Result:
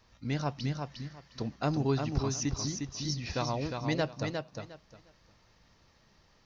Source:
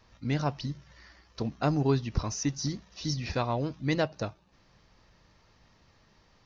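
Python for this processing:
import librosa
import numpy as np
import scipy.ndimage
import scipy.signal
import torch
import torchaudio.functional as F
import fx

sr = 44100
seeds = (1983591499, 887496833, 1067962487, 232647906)

y = fx.high_shelf(x, sr, hz=4400.0, db=4.5)
y = fx.echo_feedback(y, sr, ms=356, feedback_pct=20, wet_db=-5.0)
y = y * librosa.db_to_amplitude(-3.5)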